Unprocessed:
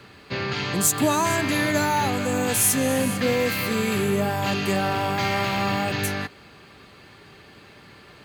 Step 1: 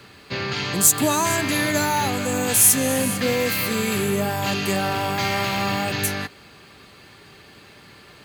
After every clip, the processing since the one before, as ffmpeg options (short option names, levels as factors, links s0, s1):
-af "highshelf=f=4400:g=7"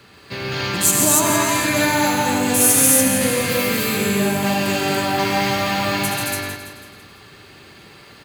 -filter_complex "[0:a]asplit=2[s0][s1];[s1]aecho=0:1:166|332|498|664|830:0.316|0.158|0.0791|0.0395|0.0198[s2];[s0][s2]amix=inputs=2:normalize=0,acrusher=bits=6:mode=log:mix=0:aa=0.000001,asplit=2[s3][s4];[s4]aecho=0:1:75.8|137|221.6|285.7:0.501|0.631|0.708|0.891[s5];[s3][s5]amix=inputs=2:normalize=0,volume=0.794"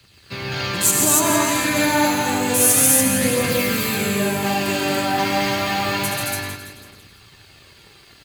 -filter_complex "[0:a]acrossover=split=120|2600[s0][s1][s2];[s1]aeval=exprs='sgn(val(0))*max(abs(val(0))-0.00376,0)':c=same[s3];[s0][s3][s2]amix=inputs=3:normalize=0,aphaser=in_gain=1:out_gain=1:delay=4:decay=0.28:speed=0.29:type=triangular,volume=0.891"